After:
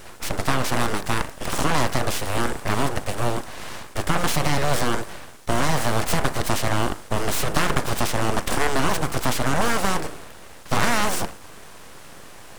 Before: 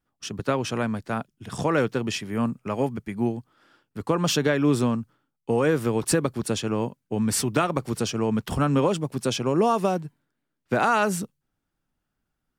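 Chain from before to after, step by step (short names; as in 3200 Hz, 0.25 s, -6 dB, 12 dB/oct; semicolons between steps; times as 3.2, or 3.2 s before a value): per-bin compression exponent 0.4; de-hum 50.03 Hz, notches 30; full-wave rectifier; gain -1 dB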